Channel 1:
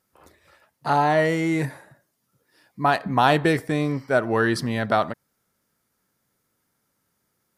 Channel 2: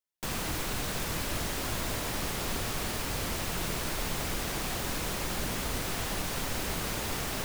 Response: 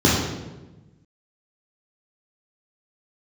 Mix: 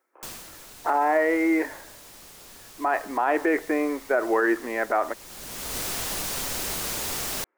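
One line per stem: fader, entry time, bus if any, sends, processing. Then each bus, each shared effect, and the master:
+2.5 dB, 0.00 s, no send, elliptic band-pass 320–2200 Hz, stop band 40 dB
+1.0 dB, 0.00 s, no send, tone controls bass -6 dB, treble +7 dB; vocal rider 2 s; auto duck -17 dB, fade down 0.50 s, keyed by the first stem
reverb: off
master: limiter -13 dBFS, peak gain reduction 10 dB

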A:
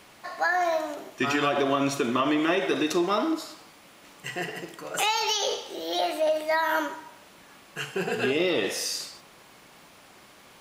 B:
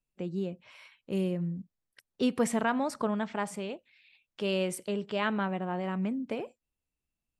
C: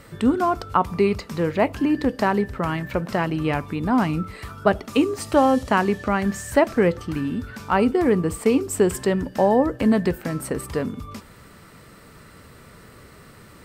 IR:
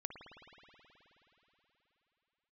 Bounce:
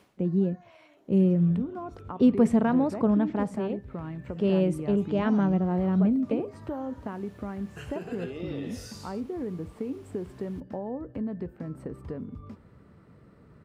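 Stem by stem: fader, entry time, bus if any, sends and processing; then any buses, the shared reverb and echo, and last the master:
-5.5 dB, 0.00 s, no send, compressor 4:1, threshold -33 dBFS, peak gain reduction 11.5 dB; auto duck -17 dB, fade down 0.20 s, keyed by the second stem
+0.5 dB, 0.00 s, no send, tilt -2 dB/oct
-9.5 dB, 1.35 s, no send, LPF 1600 Hz 6 dB/oct; compressor 2.5:1, threshold -28 dBFS, peak gain reduction 11 dB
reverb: off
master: HPF 54 Hz; tilt shelf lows +5.5 dB, about 670 Hz

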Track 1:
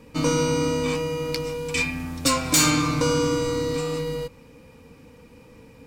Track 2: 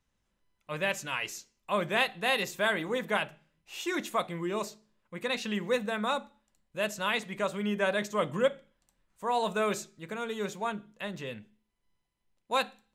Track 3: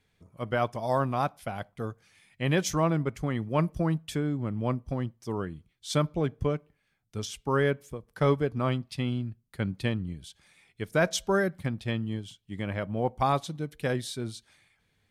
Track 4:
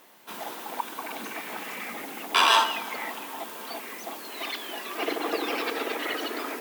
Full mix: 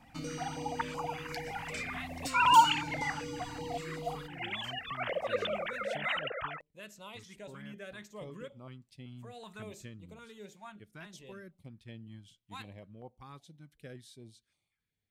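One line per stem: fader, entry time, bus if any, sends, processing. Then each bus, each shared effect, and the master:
-10.0 dB, 0.00 s, bus A, no send, dry
-14.0 dB, 0.00 s, bus A, no send, dry
-19.5 dB, 0.00 s, bus A, no send, vocal rider
+0.5 dB, 0.00 s, no bus, no send, sine-wave speech; bell 2500 Hz -5 dB 0.31 oct
bus A: 0.0 dB, compressor 3:1, threshold -38 dBFS, peak gain reduction 9.5 dB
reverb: off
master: stepped notch 5.3 Hz 440–1700 Hz

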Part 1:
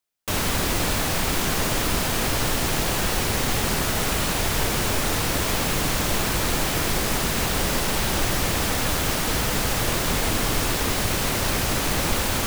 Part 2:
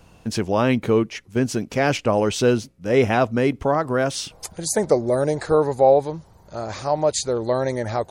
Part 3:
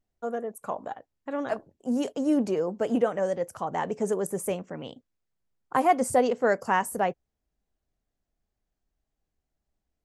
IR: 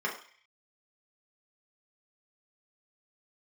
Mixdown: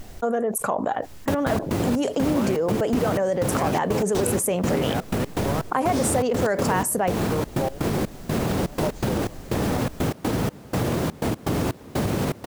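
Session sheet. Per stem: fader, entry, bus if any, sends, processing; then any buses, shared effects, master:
+3.0 dB, 1.00 s, bus A, no send, HPF 120 Hz 12 dB/oct; tilt shelf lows +9.5 dB, about 870 Hz
-4.5 dB, 1.80 s, bus A, no send, dry
+1.0 dB, 0.00 s, no bus, no send, fast leveller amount 70%
bus A: 0.0 dB, step gate "x.x.xx..xx" 123 bpm -24 dB; limiter -12 dBFS, peak gain reduction 8 dB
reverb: off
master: compressor 2:1, threshold -22 dBFS, peak gain reduction 6 dB

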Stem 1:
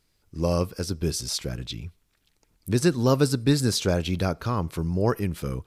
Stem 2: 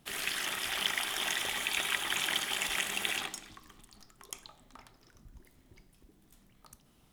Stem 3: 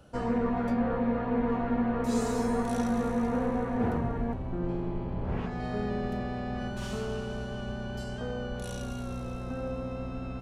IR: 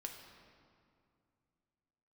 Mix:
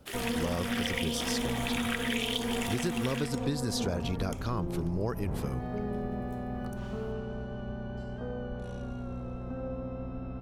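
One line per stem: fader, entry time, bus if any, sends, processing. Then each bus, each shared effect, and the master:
-4.5 dB, 0.00 s, no send, dry
-2.0 dB, 0.00 s, no send, LFO high-pass saw up 0.83 Hz 260–3800 Hz
-1.5 dB, 0.00 s, no send, LPF 1100 Hz 6 dB/oct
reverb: off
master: compressor, threshold -27 dBFS, peak gain reduction 9 dB

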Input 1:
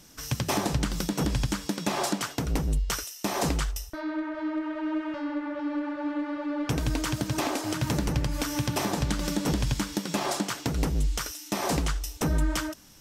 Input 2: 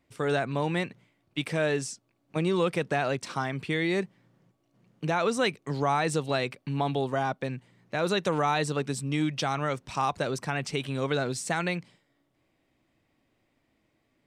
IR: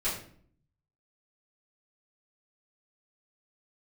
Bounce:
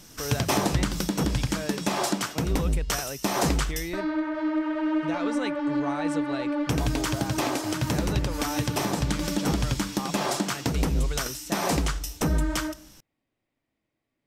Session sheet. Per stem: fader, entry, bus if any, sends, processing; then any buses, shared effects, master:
+1.5 dB, 0.00 s, send -22 dB, dry
-8.5 dB, 0.00 s, no send, dry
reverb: on, RT60 0.55 s, pre-delay 3 ms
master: vocal rider 2 s

